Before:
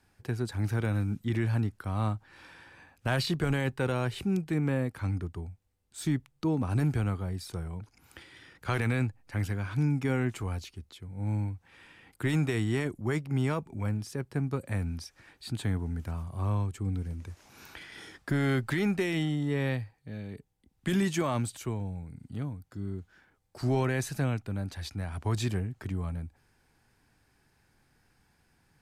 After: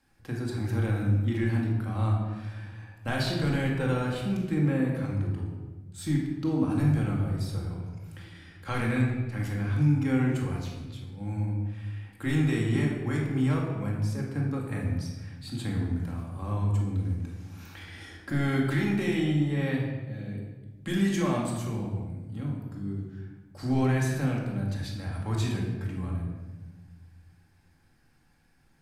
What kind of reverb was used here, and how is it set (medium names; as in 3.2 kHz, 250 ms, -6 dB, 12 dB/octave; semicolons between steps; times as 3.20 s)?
simulated room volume 930 m³, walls mixed, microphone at 2.2 m; trim -4 dB